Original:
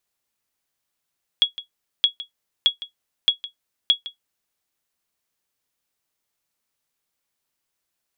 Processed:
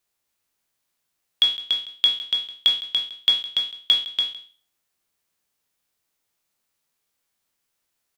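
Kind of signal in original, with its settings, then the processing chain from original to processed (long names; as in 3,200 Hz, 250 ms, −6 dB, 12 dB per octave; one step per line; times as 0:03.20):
ping with an echo 3,340 Hz, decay 0.12 s, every 0.62 s, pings 5, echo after 0.16 s, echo −16.5 dB −7 dBFS
peak hold with a decay on every bin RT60 0.39 s
on a send: single-tap delay 287 ms −5 dB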